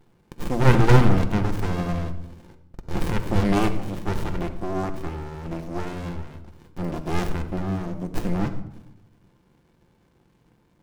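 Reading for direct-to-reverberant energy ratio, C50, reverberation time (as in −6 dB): 7.0 dB, 11.0 dB, 0.80 s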